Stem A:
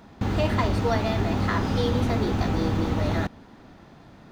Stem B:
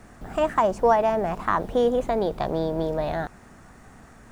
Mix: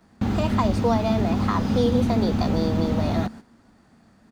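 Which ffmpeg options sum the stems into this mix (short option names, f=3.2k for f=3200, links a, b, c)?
-filter_complex "[0:a]volume=-0.5dB[a];[1:a]highpass=47,equalizer=f=4.6k:t=o:w=0.21:g=14.5,adelay=6.9,volume=-2dB[b];[a][b]amix=inputs=2:normalize=0,agate=range=-11dB:threshold=-40dB:ratio=16:detection=peak,equalizer=f=220:w=4.8:g=10.5,acrossover=split=310|3000[c][d][e];[d]acompressor=threshold=-31dB:ratio=1.5[f];[c][f][e]amix=inputs=3:normalize=0"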